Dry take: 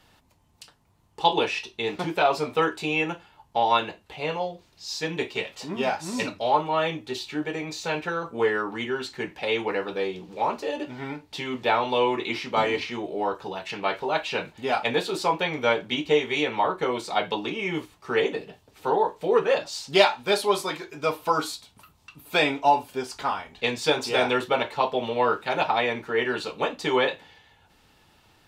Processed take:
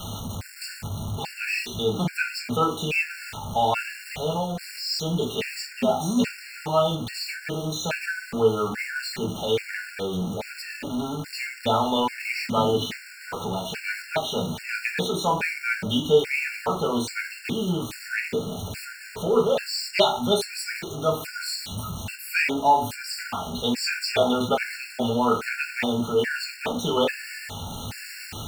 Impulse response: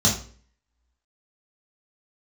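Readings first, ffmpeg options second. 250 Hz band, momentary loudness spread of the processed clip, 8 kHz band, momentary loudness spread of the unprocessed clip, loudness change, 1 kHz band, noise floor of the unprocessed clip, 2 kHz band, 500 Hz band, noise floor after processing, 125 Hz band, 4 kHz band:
+3.5 dB, 11 LU, +6.0 dB, 9 LU, 0.0 dB, -2.0 dB, -61 dBFS, +0.5 dB, -0.5 dB, -42 dBFS, +8.0 dB, +1.0 dB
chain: -filter_complex "[0:a]aeval=exprs='val(0)+0.5*0.0335*sgn(val(0))':c=same,asplit=2[a][b];[1:a]atrim=start_sample=2205,asetrate=48510,aresample=44100,lowshelf=f=140:g=-5.5[c];[b][c]afir=irnorm=-1:irlink=0,volume=-18.5dB[d];[a][d]amix=inputs=2:normalize=0,afftfilt=real='re*gt(sin(2*PI*1.2*pts/sr)*(1-2*mod(floor(b*sr/1024/1400),2)),0)':imag='im*gt(sin(2*PI*1.2*pts/sr)*(1-2*mod(floor(b*sr/1024/1400),2)),0)':win_size=1024:overlap=0.75"

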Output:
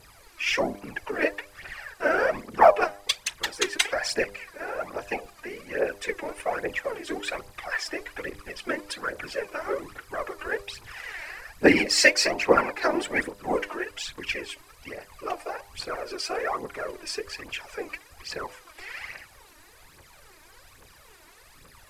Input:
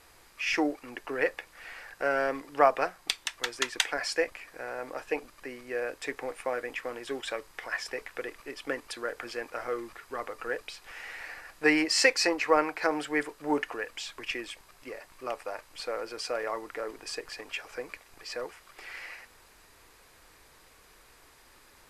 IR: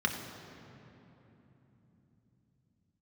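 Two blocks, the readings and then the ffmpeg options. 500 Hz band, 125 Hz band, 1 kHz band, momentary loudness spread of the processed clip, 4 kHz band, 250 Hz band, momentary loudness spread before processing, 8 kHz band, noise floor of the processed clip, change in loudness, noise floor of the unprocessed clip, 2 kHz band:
+4.0 dB, +9.5 dB, +4.5 dB, 18 LU, +4.0 dB, +3.0 dB, 18 LU, +4.5 dB, -54 dBFS, +4.0 dB, -58 dBFS, +4.5 dB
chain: -af "afftfilt=real='hypot(re,im)*cos(2*PI*random(0))':imag='hypot(re,im)*sin(2*PI*random(1))':win_size=512:overlap=0.75,aphaser=in_gain=1:out_gain=1:delay=3.4:decay=0.64:speed=1.2:type=triangular,bandreject=f=100.4:t=h:w=4,bandreject=f=200.8:t=h:w=4,bandreject=f=301.2:t=h:w=4,bandreject=f=401.6:t=h:w=4,bandreject=f=502:t=h:w=4,bandreject=f=602.4:t=h:w=4,bandreject=f=702.8:t=h:w=4,bandreject=f=803.2:t=h:w=4,bandreject=f=903.6:t=h:w=4,bandreject=f=1.004k:t=h:w=4,volume=8dB"

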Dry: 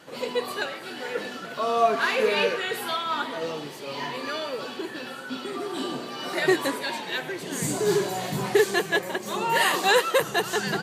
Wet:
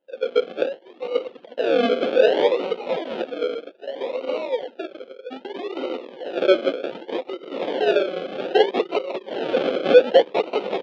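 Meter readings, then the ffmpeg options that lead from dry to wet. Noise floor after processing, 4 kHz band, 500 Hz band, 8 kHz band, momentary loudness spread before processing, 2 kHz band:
-49 dBFS, -2.0 dB, +7.0 dB, under -20 dB, 12 LU, -5.0 dB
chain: -af "bandreject=f=50:t=h:w=6,bandreject=f=100:t=h:w=6,bandreject=f=150:t=h:w=6,bandreject=f=200:t=h:w=6,bandreject=f=250:t=h:w=6,bandreject=f=300:t=h:w=6,bandreject=f=350:t=h:w=6,bandreject=f=400:t=h:w=6,anlmdn=25.1,acrusher=samples=37:mix=1:aa=0.000001:lfo=1:lforange=22.2:lforate=0.64,asoftclip=type=hard:threshold=-14.5dB,highpass=f=280:w=0.5412,highpass=f=280:w=1.3066,equalizer=f=520:t=q:w=4:g=10,equalizer=f=1.1k:t=q:w=4:g=-6,equalizer=f=1.9k:t=q:w=4:g=-6,equalizer=f=3.2k:t=q:w=4:g=5,lowpass=f=3.6k:w=0.5412,lowpass=f=3.6k:w=1.3066,volume=3dB"

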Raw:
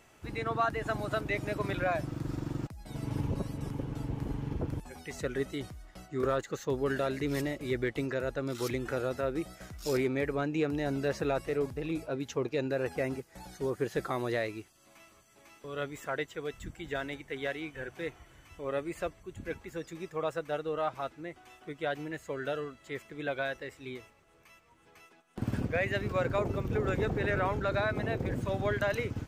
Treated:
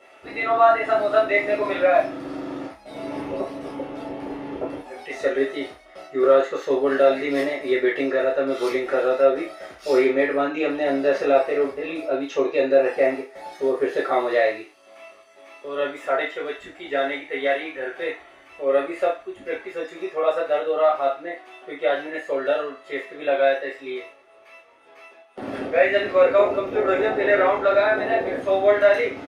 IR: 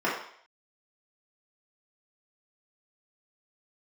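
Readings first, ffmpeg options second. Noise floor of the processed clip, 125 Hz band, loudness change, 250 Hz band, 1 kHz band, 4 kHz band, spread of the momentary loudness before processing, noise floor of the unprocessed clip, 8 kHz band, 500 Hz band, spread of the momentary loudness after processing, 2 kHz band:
-50 dBFS, under -10 dB, +12.0 dB, +6.5 dB, +12.5 dB, +8.5 dB, 10 LU, -61 dBFS, n/a, +14.0 dB, 15 LU, +10.5 dB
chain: -filter_complex "[0:a]equalizer=f=580:w=1.9:g=5.5,asplit=2[a][b];[b]adelay=29,volume=-6.5dB[c];[a][c]amix=inputs=2:normalize=0[d];[1:a]atrim=start_sample=2205,asetrate=79380,aresample=44100[e];[d][e]afir=irnorm=-1:irlink=0"

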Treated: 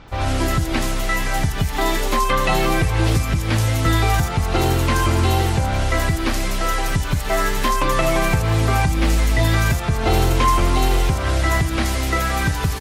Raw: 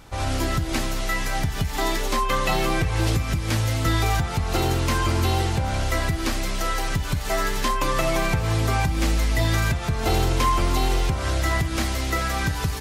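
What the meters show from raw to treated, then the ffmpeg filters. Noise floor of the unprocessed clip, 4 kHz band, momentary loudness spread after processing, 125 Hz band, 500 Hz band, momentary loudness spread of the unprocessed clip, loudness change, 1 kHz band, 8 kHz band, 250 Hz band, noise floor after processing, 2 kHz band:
-29 dBFS, +2.5 dB, 4 LU, +4.5 dB, +4.5 dB, 4 LU, +4.5 dB, +4.5 dB, +3.0 dB, +4.5 dB, -24 dBFS, +4.5 dB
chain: -filter_complex "[0:a]acrossover=split=4900[a][b];[b]adelay=80[c];[a][c]amix=inputs=2:normalize=0,volume=4.5dB"

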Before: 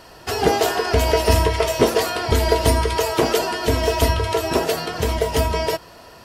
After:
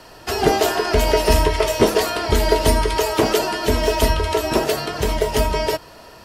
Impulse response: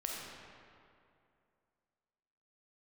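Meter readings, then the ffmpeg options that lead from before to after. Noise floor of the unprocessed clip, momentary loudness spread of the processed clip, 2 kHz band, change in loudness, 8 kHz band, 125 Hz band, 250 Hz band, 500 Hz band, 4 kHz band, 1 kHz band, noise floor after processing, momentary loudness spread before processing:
-44 dBFS, 5 LU, +1.0 dB, +1.0 dB, +1.0 dB, -1.5 dB, +1.5 dB, +1.0 dB, +1.0 dB, +0.5 dB, -43 dBFS, 6 LU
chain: -af "afreqshift=-18,volume=1dB"

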